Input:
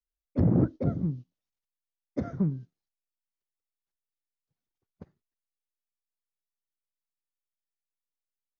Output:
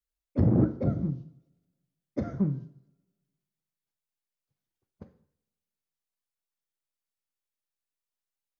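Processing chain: two-slope reverb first 0.58 s, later 1.5 s, from -23 dB, DRR 8 dB

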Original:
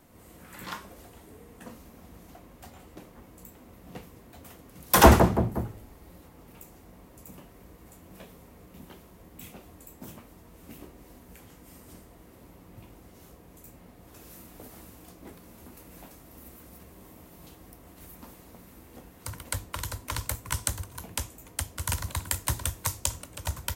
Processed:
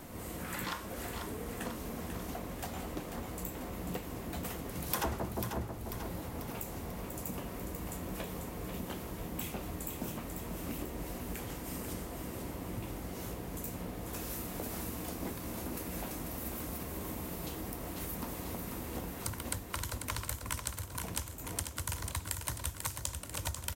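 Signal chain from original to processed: compressor 6:1, threshold -46 dBFS, peak gain reduction 33 dB; on a send: feedback echo 0.492 s, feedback 55%, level -7 dB; on the sum: gain +10 dB

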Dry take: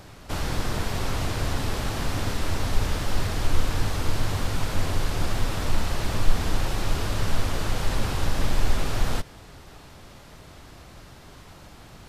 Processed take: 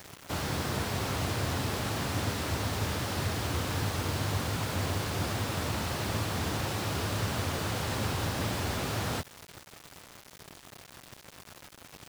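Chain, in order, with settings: HPF 78 Hz 24 dB/oct; bit-crush 7-bit; gain -2 dB

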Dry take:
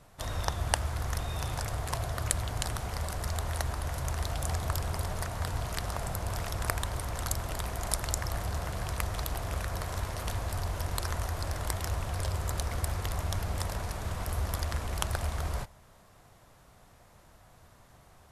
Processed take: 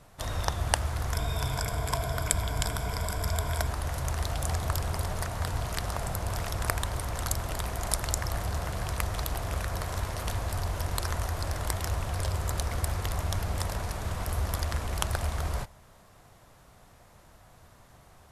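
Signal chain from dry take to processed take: 1.13–3.67 ripple EQ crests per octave 1.7, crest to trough 10 dB; gain +2 dB

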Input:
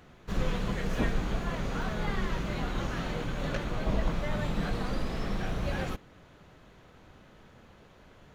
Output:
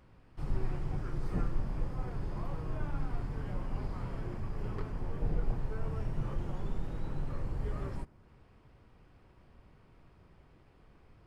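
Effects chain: dynamic EQ 4100 Hz, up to -8 dB, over -58 dBFS, Q 0.86; speed mistake 45 rpm record played at 33 rpm; low shelf 140 Hz +7.5 dB; gain -8.5 dB

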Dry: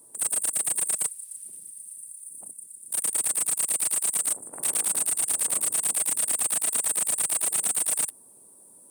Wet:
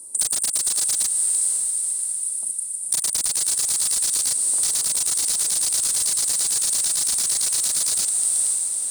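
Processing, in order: on a send: diffused feedback echo 0.488 s, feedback 44%, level -7 dB; on the sum: wrapped overs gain 20.5 dB; compressor, threshold -30 dBFS, peak gain reduction 7 dB; band shelf 6300 Hz +14 dB

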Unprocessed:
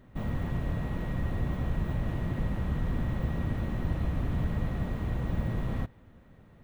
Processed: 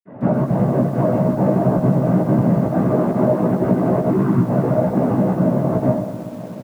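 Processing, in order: LPF 1900 Hz 12 dB/oct; notches 60/120/180/240/300/360/420/480 Hz; reverb, pre-delay 47 ms; 4.09–4.45 spectral delete 330–880 Hz; 2.64–5.02 bell 160 Hz -6 dB 0.35 oct; noise vocoder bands 16; pump 135 bpm, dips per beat 1, -18 dB, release 0.13 s; bell 620 Hz +14 dB 0.27 oct; compressor 12:1, threshold -22 dBFS, peak gain reduction 9.5 dB; doubler 16 ms -2 dB; echo 72 ms -19.5 dB; lo-fi delay 0.124 s, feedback 80%, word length 8-bit, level -13 dB; gain +7.5 dB

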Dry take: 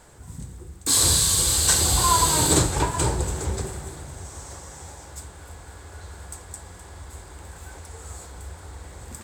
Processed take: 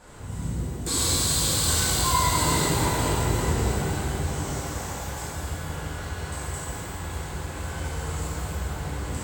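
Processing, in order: high shelf 6100 Hz -8 dB; compressor 4:1, threshold -31 dBFS, peak gain reduction 13.5 dB; shimmer reverb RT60 2.3 s, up +12 st, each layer -8 dB, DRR -9.5 dB; gain -1 dB

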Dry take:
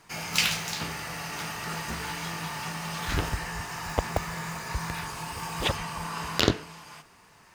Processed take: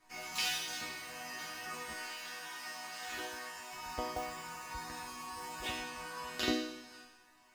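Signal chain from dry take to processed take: 1.94–3.73 HPF 500 Hz 6 dB/oct; resonator bank B3 major, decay 0.82 s; Schroeder reverb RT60 2.1 s, combs from 32 ms, DRR 18 dB; gain +14.5 dB

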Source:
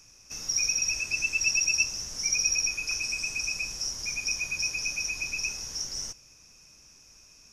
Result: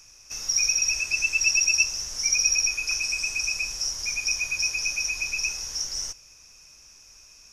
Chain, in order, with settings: bell 190 Hz -9 dB 2.4 oct; gain +4 dB

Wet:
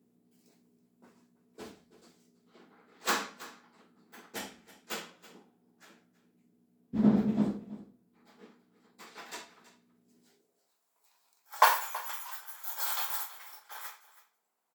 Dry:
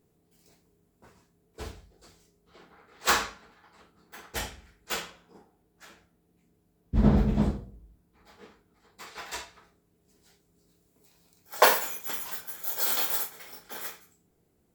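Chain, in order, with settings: echo 0.326 s -17.5 dB; buzz 60 Hz, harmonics 4, -67 dBFS 0 dB/oct; high-pass sweep 230 Hz -> 940 Hz, 10.22–10.76; gain -6.5 dB

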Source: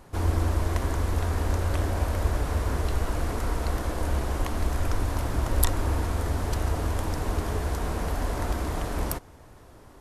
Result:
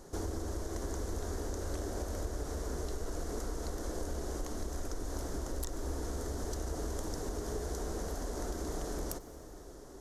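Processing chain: fifteen-band EQ 100 Hz -11 dB, 400 Hz +6 dB, 1000 Hz -5 dB, 2500 Hz -11 dB, 6300 Hz +10 dB; compressor 4:1, threshold -33 dBFS, peak gain reduction 15 dB; soft clip -22 dBFS, distortion -28 dB; reverb RT60 5.4 s, pre-delay 83 ms, DRR 13 dB; gain -1.5 dB

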